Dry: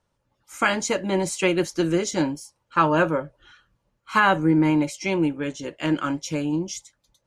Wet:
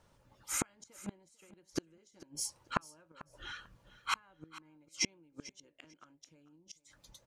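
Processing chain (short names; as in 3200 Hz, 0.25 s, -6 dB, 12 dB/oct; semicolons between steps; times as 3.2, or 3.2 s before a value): compressor 6:1, threshold -29 dBFS, peak gain reduction 14.5 dB; flipped gate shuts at -26 dBFS, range -38 dB; on a send: feedback echo 0.444 s, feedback 19%, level -18 dB; on the sum: gain +6.5 dB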